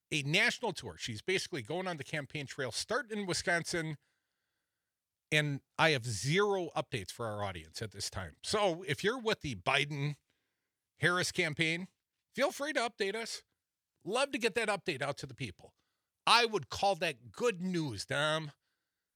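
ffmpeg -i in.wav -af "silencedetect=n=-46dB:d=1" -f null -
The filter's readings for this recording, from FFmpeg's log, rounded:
silence_start: 3.95
silence_end: 5.32 | silence_duration: 1.37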